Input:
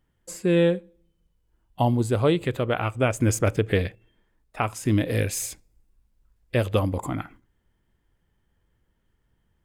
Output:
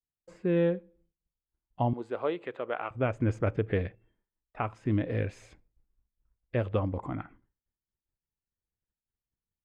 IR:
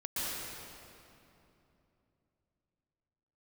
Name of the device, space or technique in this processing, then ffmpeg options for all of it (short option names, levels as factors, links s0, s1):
hearing-loss simulation: -filter_complex "[0:a]asettb=1/sr,asplit=3[s0][s1][s2];[s0]atrim=end=1.934[s3];[s1]atrim=start=1.93:end=2.91,asetpts=PTS-STARTPTS,afade=t=in:d=0.004:c=qsin,afade=t=out:st=0.976:d=0.004:c=qsin,highpass=440[s4];[s2]atrim=start=2.906[s5];[s3][s4]acrossfade=d=0.004:c1=hsin:c2=qsin[s6];[s6][s5]acrossfade=d=0.004:c1=qsin:c2=hsin,lowpass=2000,agate=range=0.0224:threshold=0.00178:ratio=3:detection=peak,volume=0.501"